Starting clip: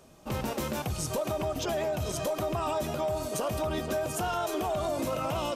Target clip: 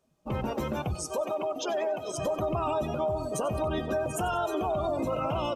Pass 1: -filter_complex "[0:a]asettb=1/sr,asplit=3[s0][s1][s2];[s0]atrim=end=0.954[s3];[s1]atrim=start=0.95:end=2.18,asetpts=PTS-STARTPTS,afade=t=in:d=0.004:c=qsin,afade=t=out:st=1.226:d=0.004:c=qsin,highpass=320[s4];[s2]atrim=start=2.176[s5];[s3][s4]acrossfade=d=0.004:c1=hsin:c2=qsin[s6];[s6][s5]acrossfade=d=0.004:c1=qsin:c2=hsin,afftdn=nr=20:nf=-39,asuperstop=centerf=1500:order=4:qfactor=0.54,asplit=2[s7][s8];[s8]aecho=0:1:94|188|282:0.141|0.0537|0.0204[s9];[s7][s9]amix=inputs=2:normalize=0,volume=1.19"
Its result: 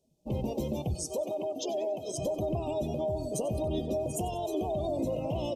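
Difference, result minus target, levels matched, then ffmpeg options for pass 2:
2 kHz band -12.0 dB
-filter_complex "[0:a]asettb=1/sr,asplit=3[s0][s1][s2];[s0]atrim=end=0.954[s3];[s1]atrim=start=0.95:end=2.18,asetpts=PTS-STARTPTS,afade=t=in:d=0.004:c=qsin,afade=t=out:st=1.226:d=0.004:c=qsin,highpass=320[s4];[s2]atrim=start=2.176[s5];[s3][s4]acrossfade=d=0.004:c1=hsin:c2=qsin[s6];[s6][s5]acrossfade=d=0.004:c1=qsin:c2=hsin,afftdn=nr=20:nf=-39,asplit=2[s7][s8];[s8]aecho=0:1:94|188|282:0.141|0.0537|0.0204[s9];[s7][s9]amix=inputs=2:normalize=0,volume=1.19"

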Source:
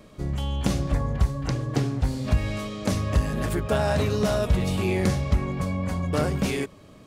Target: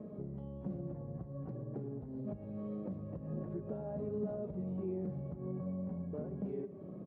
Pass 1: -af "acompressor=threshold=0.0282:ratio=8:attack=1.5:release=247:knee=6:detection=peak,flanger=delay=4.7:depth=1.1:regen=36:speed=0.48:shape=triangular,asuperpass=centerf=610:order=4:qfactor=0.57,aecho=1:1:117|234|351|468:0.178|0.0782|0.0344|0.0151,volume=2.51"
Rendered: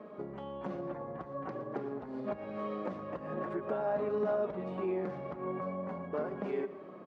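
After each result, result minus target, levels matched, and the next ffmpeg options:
compression: peak gain reduction -6.5 dB; 250 Hz band -4.0 dB
-af "acompressor=threshold=0.0119:ratio=8:attack=1.5:release=247:knee=6:detection=peak,flanger=delay=4.7:depth=1.1:regen=36:speed=0.48:shape=triangular,asuperpass=centerf=610:order=4:qfactor=0.57,aecho=1:1:117|234|351|468:0.178|0.0782|0.0344|0.0151,volume=2.51"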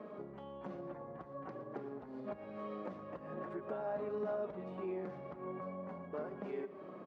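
250 Hz band -4.0 dB
-af "acompressor=threshold=0.0119:ratio=8:attack=1.5:release=247:knee=6:detection=peak,flanger=delay=4.7:depth=1.1:regen=36:speed=0.48:shape=triangular,asuperpass=centerf=260:order=4:qfactor=0.57,aecho=1:1:117|234|351|468:0.178|0.0782|0.0344|0.0151,volume=2.51"

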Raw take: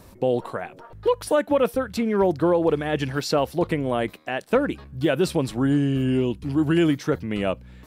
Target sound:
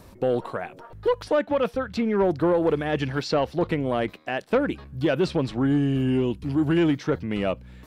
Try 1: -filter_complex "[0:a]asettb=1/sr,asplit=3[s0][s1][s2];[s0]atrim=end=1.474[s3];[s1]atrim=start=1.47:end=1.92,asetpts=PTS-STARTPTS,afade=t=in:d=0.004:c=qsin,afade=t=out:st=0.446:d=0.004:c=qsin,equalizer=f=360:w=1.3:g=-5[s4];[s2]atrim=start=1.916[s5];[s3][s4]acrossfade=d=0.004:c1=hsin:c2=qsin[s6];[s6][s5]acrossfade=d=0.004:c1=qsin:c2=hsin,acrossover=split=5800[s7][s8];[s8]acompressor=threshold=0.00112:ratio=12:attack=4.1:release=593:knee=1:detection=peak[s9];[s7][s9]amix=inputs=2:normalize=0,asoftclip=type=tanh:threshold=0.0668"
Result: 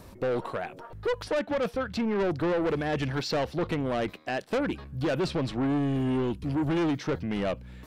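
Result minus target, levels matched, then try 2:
saturation: distortion +12 dB
-filter_complex "[0:a]asettb=1/sr,asplit=3[s0][s1][s2];[s0]atrim=end=1.474[s3];[s1]atrim=start=1.47:end=1.92,asetpts=PTS-STARTPTS,afade=t=in:d=0.004:c=qsin,afade=t=out:st=0.446:d=0.004:c=qsin,equalizer=f=360:w=1.3:g=-5[s4];[s2]atrim=start=1.916[s5];[s3][s4]acrossfade=d=0.004:c1=hsin:c2=qsin[s6];[s6][s5]acrossfade=d=0.004:c1=qsin:c2=hsin,acrossover=split=5800[s7][s8];[s8]acompressor=threshold=0.00112:ratio=12:attack=4.1:release=593:knee=1:detection=peak[s9];[s7][s9]amix=inputs=2:normalize=0,asoftclip=type=tanh:threshold=0.237"

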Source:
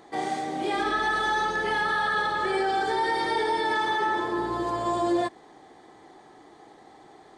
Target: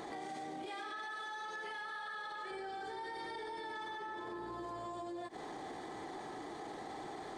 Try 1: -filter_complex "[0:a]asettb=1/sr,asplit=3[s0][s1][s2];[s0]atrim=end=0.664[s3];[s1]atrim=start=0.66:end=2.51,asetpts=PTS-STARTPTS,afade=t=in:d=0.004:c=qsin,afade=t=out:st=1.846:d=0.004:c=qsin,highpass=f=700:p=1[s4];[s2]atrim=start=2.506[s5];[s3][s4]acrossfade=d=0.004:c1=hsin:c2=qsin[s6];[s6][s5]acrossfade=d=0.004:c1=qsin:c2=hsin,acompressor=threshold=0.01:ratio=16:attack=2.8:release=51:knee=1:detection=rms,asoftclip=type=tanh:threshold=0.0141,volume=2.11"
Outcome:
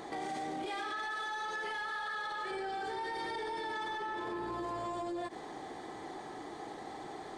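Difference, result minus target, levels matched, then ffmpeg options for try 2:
compression: peak gain reduction -6.5 dB
-filter_complex "[0:a]asettb=1/sr,asplit=3[s0][s1][s2];[s0]atrim=end=0.664[s3];[s1]atrim=start=0.66:end=2.51,asetpts=PTS-STARTPTS,afade=t=in:d=0.004:c=qsin,afade=t=out:st=1.846:d=0.004:c=qsin,highpass=f=700:p=1[s4];[s2]atrim=start=2.506[s5];[s3][s4]acrossfade=d=0.004:c1=hsin:c2=qsin[s6];[s6][s5]acrossfade=d=0.004:c1=qsin:c2=hsin,acompressor=threshold=0.00447:ratio=16:attack=2.8:release=51:knee=1:detection=rms,asoftclip=type=tanh:threshold=0.0141,volume=2.11"

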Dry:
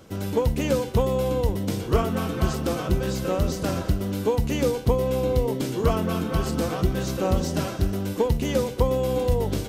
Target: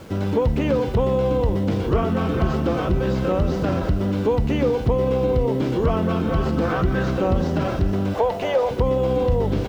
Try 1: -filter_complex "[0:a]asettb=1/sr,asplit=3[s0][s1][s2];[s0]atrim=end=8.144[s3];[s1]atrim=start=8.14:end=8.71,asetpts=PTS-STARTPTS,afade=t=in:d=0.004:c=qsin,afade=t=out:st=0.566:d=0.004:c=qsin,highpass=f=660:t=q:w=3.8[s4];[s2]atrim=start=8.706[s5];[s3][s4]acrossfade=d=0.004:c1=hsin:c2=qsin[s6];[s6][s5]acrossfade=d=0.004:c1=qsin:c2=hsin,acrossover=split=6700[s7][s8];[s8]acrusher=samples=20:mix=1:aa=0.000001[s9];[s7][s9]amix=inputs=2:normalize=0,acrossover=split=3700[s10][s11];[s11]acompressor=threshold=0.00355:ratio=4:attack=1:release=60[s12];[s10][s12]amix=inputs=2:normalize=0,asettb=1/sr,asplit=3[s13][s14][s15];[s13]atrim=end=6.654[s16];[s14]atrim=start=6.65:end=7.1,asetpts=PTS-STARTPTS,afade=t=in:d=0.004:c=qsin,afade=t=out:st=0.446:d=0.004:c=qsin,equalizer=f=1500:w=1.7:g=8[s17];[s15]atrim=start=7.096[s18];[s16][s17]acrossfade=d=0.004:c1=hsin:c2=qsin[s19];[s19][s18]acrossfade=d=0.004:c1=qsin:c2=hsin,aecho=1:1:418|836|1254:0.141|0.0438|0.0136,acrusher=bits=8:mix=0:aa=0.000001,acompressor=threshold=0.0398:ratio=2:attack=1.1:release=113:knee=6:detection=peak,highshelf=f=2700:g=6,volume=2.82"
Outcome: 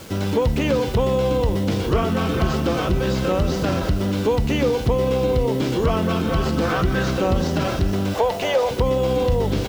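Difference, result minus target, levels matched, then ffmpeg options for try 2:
4 kHz band +7.0 dB
-filter_complex "[0:a]asettb=1/sr,asplit=3[s0][s1][s2];[s0]atrim=end=8.144[s3];[s1]atrim=start=8.14:end=8.71,asetpts=PTS-STARTPTS,afade=t=in:d=0.004:c=qsin,afade=t=out:st=0.566:d=0.004:c=qsin,highpass=f=660:t=q:w=3.8[s4];[s2]atrim=start=8.706[s5];[s3][s4]acrossfade=d=0.004:c1=hsin:c2=qsin[s6];[s6][s5]acrossfade=d=0.004:c1=qsin:c2=hsin,acrossover=split=6700[s7][s8];[s8]acrusher=samples=20:mix=1:aa=0.000001[s9];[s7][s9]amix=inputs=2:normalize=0,acrossover=split=3700[s10][s11];[s11]acompressor=threshold=0.00355:ratio=4:attack=1:release=60[s12];[s10][s12]amix=inputs=2:normalize=0,asettb=1/sr,asplit=3[s13][s14][s15];[s13]atrim=end=6.654[s16];[s14]atrim=start=6.65:end=7.1,asetpts=PTS-STARTPTS,afade=t=in:d=0.004:c=qsin,afade=t=out:st=0.446:d=0.004:c=qsin,equalizer=f=1500:w=1.7:g=8[s17];[s15]atrim=start=7.096[s18];[s16][s17]acrossfade=d=0.004:c1=hsin:c2=qsin[s19];[s19][s18]acrossfade=d=0.004:c1=qsin:c2=hsin,aecho=1:1:418|836|1254:0.141|0.0438|0.0136,acrusher=bits=8:mix=0:aa=0.000001,acompressor=threshold=0.0398:ratio=2:attack=1.1:release=113:knee=6:detection=peak,highshelf=f=2700:g=-6,volume=2.82"

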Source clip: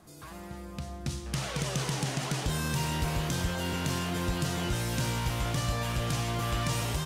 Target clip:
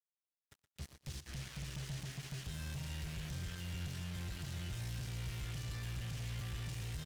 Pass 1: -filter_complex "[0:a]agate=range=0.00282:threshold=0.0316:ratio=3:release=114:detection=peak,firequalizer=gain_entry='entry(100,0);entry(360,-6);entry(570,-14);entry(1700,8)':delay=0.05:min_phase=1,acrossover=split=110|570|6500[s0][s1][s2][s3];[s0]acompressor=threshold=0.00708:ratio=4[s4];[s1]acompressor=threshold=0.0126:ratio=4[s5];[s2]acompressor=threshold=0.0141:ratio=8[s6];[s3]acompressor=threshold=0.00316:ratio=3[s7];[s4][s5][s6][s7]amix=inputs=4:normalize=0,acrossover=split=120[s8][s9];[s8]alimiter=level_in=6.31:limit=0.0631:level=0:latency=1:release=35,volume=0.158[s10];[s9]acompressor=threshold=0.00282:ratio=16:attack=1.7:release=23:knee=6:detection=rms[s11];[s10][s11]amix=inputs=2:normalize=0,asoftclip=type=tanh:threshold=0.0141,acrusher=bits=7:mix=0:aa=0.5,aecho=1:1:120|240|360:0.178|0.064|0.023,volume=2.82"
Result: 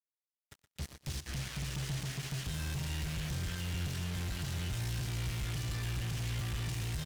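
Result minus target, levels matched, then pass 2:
saturation: distortion -13 dB
-filter_complex "[0:a]agate=range=0.00282:threshold=0.0316:ratio=3:release=114:detection=peak,firequalizer=gain_entry='entry(100,0);entry(360,-6);entry(570,-14);entry(1700,8)':delay=0.05:min_phase=1,acrossover=split=110|570|6500[s0][s1][s2][s3];[s0]acompressor=threshold=0.00708:ratio=4[s4];[s1]acompressor=threshold=0.0126:ratio=4[s5];[s2]acompressor=threshold=0.0141:ratio=8[s6];[s3]acompressor=threshold=0.00316:ratio=3[s7];[s4][s5][s6][s7]amix=inputs=4:normalize=0,acrossover=split=120[s8][s9];[s8]alimiter=level_in=6.31:limit=0.0631:level=0:latency=1:release=35,volume=0.158[s10];[s9]acompressor=threshold=0.00282:ratio=16:attack=1.7:release=23:knee=6:detection=rms[s11];[s10][s11]amix=inputs=2:normalize=0,asoftclip=type=tanh:threshold=0.00422,acrusher=bits=7:mix=0:aa=0.5,aecho=1:1:120|240|360:0.178|0.064|0.023,volume=2.82"

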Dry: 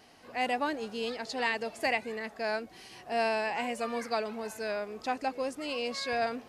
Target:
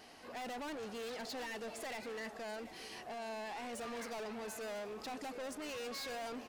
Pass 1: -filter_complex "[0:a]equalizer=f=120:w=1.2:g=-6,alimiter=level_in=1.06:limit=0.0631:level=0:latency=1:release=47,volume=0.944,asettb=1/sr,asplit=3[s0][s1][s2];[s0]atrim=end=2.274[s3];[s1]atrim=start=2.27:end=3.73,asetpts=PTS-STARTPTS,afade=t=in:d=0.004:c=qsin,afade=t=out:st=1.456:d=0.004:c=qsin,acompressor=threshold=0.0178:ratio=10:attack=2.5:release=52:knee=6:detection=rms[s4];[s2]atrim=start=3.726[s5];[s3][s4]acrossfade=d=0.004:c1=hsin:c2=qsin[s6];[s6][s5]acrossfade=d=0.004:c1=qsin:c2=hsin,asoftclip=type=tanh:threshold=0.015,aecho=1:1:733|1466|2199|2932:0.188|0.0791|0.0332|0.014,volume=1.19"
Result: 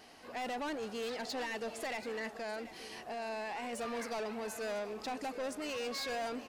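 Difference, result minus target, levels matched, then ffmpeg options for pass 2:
saturation: distortion -4 dB
-filter_complex "[0:a]equalizer=f=120:w=1.2:g=-6,alimiter=level_in=1.06:limit=0.0631:level=0:latency=1:release=47,volume=0.944,asettb=1/sr,asplit=3[s0][s1][s2];[s0]atrim=end=2.274[s3];[s1]atrim=start=2.27:end=3.73,asetpts=PTS-STARTPTS,afade=t=in:d=0.004:c=qsin,afade=t=out:st=1.456:d=0.004:c=qsin,acompressor=threshold=0.0178:ratio=10:attack=2.5:release=52:knee=6:detection=rms[s4];[s2]atrim=start=3.726[s5];[s3][s4]acrossfade=d=0.004:c1=hsin:c2=qsin[s6];[s6][s5]acrossfade=d=0.004:c1=qsin:c2=hsin,asoftclip=type=tanh:threshold=0.00708,aecho=1:1:733|1466|2199|2932:0.188|0.0791|0.0332|0.014,volume=1.19"

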